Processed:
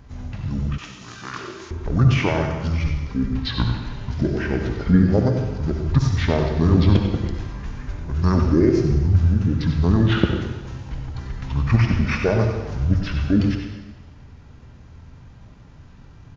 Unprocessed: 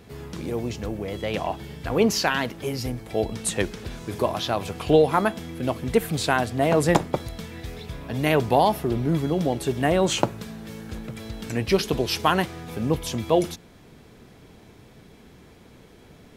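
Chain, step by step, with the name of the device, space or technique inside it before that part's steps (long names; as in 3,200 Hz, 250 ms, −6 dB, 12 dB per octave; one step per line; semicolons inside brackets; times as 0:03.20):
monster voice (pitch shifter −9 semitones; formants moved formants −4.5 semitones; low-shelf EQ 160 Hz +6 dB; single-tap delay 96 ms −10.5 dB; convolution reverb RT60 1.2 s, pre-delay 55 ms, DRR 4 dB)
0:00.78–0:01.71: meter weighting curve ITU-R 468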